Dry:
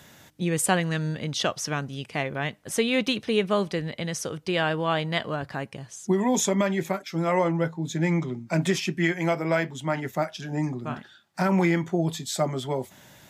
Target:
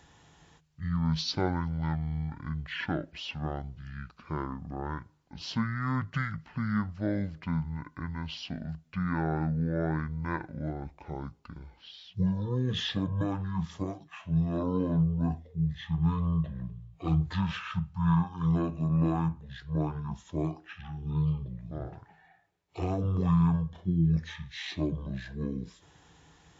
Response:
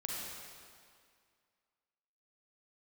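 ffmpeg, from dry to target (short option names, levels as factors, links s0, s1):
-af "asetrate=22050,aresample=44100,equalizer=f=160:t=o:w=0.21:g=14,volume=0.398"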